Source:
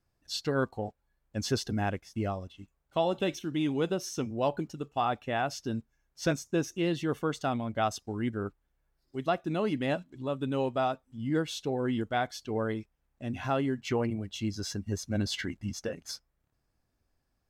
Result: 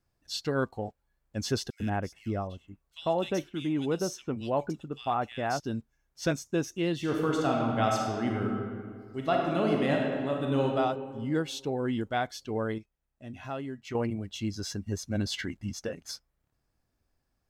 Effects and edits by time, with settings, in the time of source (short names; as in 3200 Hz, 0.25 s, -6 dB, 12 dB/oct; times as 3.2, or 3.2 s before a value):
1.7–5.6 bands offset in time highs, lows 0.1 s, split 2400 Hz
6.96–10.66 reverb throw, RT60 2 s, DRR -1 dB
12.78–13.95 resonator 640 Hz, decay 0.17 s